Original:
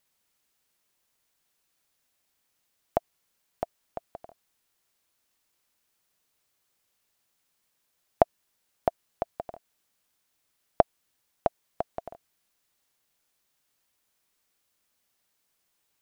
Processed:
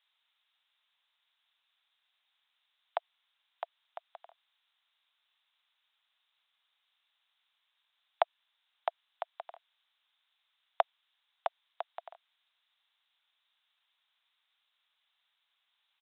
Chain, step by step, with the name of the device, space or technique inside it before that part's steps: musical greeting card (resampled via 8 kHz; high-pass 830 Hz 24 dB/octave; peaking EQ 3.7 kHz +11.5 dB 0.54 oct)

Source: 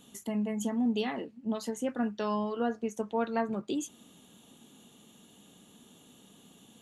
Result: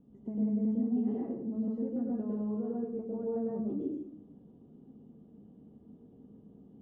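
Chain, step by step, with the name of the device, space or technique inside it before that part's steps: television next door (compression, threshold -33 dBFS, peak gain reduction 9 dB; low-pass 350 Hz 12 dB/octave; reverberation RT60 0.70 s, pre-delay 97 ms, DRR -4.5 dB)

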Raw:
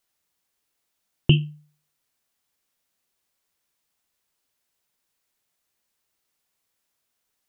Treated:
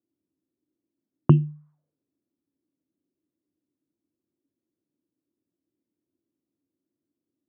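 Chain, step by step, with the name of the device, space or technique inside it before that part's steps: envelope filter bass rig (touch-sensitive low-pass 340–1100 Hz up, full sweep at -31 dBFS; cabinet simulation 81–2100 Hz, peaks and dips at 280 Hz +8 dB, 430 Hz -8 dB, 790 Hz -6 dB); trim +1 dB

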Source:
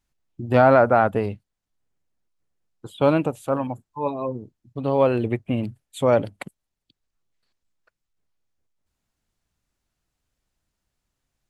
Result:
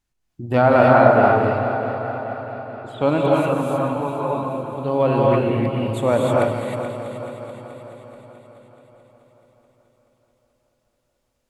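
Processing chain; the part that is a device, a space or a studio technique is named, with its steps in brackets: 1.13–3.09 s: low-pass 6.6 kHz 12 dB/octave; multi-head tape echo (multi-head delay 215 ms, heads first and second, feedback 66%, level -13 dB; wow and flutter 15 cents); gated-style reverb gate 340 ms rising, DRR -3 dB; trim -1 dB

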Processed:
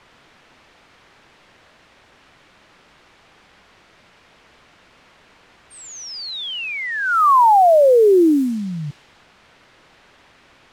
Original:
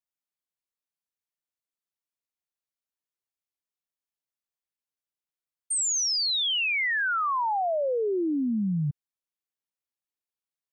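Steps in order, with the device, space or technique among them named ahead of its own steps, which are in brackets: high-order bell 610 Hz +15 dB 2.5 oct; cassette deck with a dynamic noise filter (white noise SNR 23 dB; level-controlled noise filter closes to 2.3 kHz, open at -13 dBFS)

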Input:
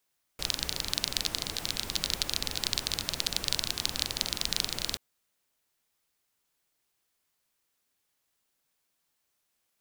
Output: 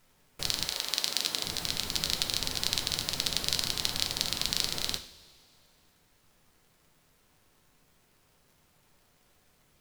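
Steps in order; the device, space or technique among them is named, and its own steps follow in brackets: vinyl LP (wow and flutter; crackle; pink noise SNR 31 dB); 0.64–1.43 s: high-pass 540 Hz -> 190 Hz 12 dB/octave; two-slope reverb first 0.43 s, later 2.4 s, from -18 dB, DRR 6.5 dB

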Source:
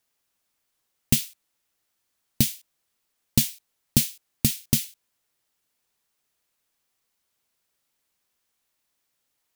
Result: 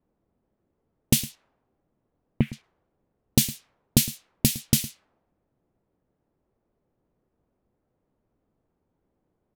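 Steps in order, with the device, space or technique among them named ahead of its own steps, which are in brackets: 1.24–2.53 s: steep low-pass 2.4 kHz 36 dB/octave; delay 111 ms -17 dB; cassette deck with a dynamic noise filter (white noise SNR 28 dB; level-controlled noise filter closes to 390 Hz, open at -23 dBFS); trim +1.5 dB

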